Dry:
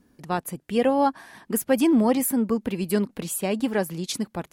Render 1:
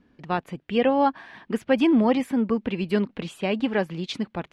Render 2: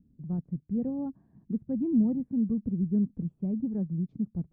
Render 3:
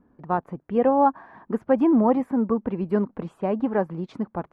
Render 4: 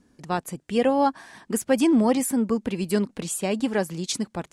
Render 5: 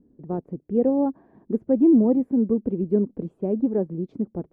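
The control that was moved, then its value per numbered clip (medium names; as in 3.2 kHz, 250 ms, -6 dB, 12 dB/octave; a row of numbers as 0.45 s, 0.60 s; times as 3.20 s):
resonant low-pass, frequency: 3 kHz, 160 Hz, 1.1 kHz, 8 kHz, 400 Hz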